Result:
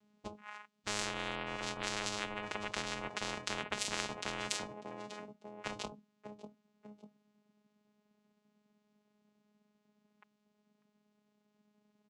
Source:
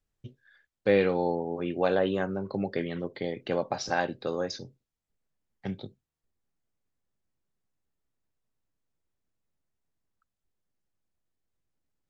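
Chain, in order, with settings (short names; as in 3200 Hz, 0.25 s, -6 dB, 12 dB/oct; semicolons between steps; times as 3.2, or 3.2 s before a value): vocoder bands 4, saw 209 Hz; on a send: feedback echo 0.595 s, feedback 34%, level -23 dB; on the sum: spectral compressor 10:1; gain +1.5 dB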